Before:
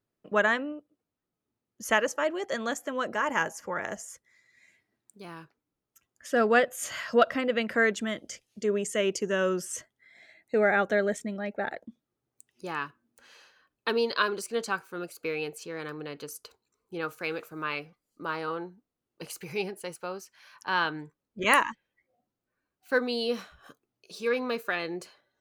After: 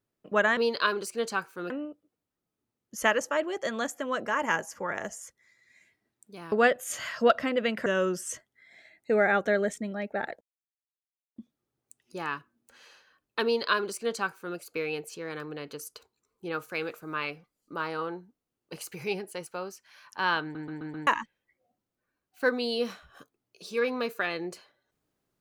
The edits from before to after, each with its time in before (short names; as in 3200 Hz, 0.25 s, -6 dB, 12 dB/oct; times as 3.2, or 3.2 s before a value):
5.39–6.44 cut
7.78–9.3 cut
11.85 insert silence 0.95 s
13.93–15.06 copy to 0.57
20.91 stutter in place 0.13 s, 5 plays